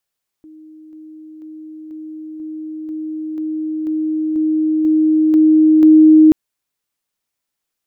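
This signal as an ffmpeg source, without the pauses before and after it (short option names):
-f lavfi -i "aevalsrc='pow(10,(-37+3*floor(t/0.49))/20)*sin(2*PI*312*t)':d=5.88:s=44100"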